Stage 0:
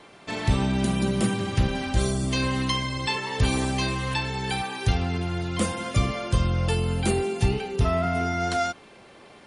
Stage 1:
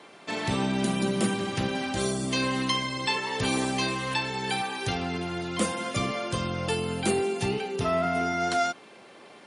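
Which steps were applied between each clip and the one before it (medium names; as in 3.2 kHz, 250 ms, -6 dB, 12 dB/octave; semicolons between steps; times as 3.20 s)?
high-pass 190 Hz 12 dB/octave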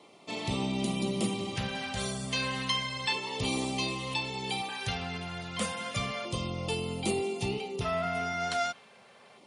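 bass shelf 65 Hz +7.5 dB; LFO notch square 0.32 Hz 320–1600 Hz; dynamic bell 3.1 kHz, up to +4 dB, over -42 dBFS, Q 1; trim -5 dB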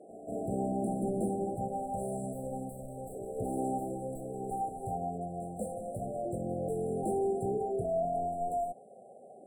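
overdrive pedal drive 21 dB, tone 1.5 kHz, clips at -17 dBFS; pre-echo 190 ms -13.5 dB; FFT band-reject 800–7400 Hz; trim -3.5 dB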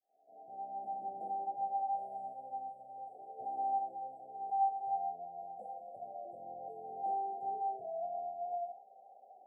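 fade-in on the opening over 1.24 s; band-pass filter 800 Hz, Q 9.8; on a send: flutter echo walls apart 7.7 m, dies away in 0.25 s; on the sum: trim +4 dB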